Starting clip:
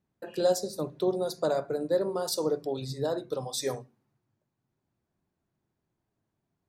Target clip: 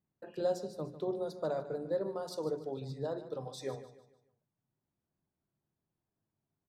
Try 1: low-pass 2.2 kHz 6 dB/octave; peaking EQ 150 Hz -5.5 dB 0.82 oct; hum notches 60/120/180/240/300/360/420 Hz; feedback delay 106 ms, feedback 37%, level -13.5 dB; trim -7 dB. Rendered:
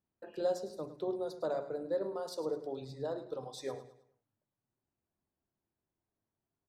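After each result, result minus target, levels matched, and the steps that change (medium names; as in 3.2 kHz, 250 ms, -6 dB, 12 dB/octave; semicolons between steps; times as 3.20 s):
echo 43 ms early; 125 Hz band -5.5 dB
change: feedback delay 149 ms, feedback 37%, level -13.5 dB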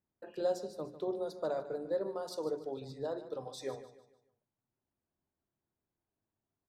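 125 Hz band -6.5 dB
change: peaking EQ 150 Hz +3 dB 0.82 oct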